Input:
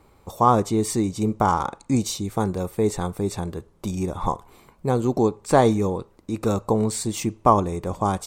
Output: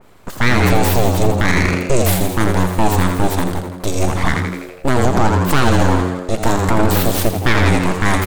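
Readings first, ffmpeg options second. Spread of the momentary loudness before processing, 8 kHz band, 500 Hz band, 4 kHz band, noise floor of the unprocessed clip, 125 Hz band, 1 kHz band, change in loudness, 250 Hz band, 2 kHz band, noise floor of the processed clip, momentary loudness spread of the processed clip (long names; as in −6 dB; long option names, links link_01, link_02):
12 LU, +7.0 dB, +4.5 dB, +12.0 dB, −57 dBFS, +10.0 dB, +4.0 dB, +6.5 dB, +6.0 dB, +19.0 dB, −34 dBFS, 7 LU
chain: -filter_complex "[0:a]aeval=exprs='abs(val(0))':channel_layout=same,aeval=exprs='0.794*(cos(1*acos(clip(val(0)/0.794,-1,1)))-cos(1*PI/2))+0.0794*(cos(6*acos(clip(val(0)/0.794,-1,1)))-cos(6*PI/2))':channel_layout=same,asplit=2[link_01][link_02];[link_02]asplit=7[link_03][link_04][link_05][link_06][link_07][link_08][link_09];[link_03]adelay=83,afreqshift=90,volume=-8dB[link_10];[link_04]adelay=166,afreqshift=180,volume=-12.9dB[link_11];[link_05]adelay=249,afreqshift=270,volume=-17.8dB[link_12];[link_06]adelay=332,afreqshift=360,volume=-22.6dB[link_13];[link_07]adelay=415,afreqshift=450,volume=-27.5dB[link_14];[link_08]adelay=498,afreqshift=540,volume=-32.4dB[link_15];[link_09]adelay=581,afreqshift=630,volume=-37.3dB[link_16];[link_10][link_11][link_12][link_13][link_14][link_15][link_16]amix=inputs=7:normalize=0[link_17];[link_01][link_17]amix=inputs=2:normalize=0,alimiter=level_in=11.5dB:limit=-1dB:release=50:level=0:latency=1,adynamicequalizer=threshold=0.0282:dfrequency=2600:dqfactor=0.7:tfrequency=2600:tqfactor=0.7:attack=5:release=100:ratio=0.375:range=1.5:mode=boostabove:tftype=highshelf,volume=-2dB"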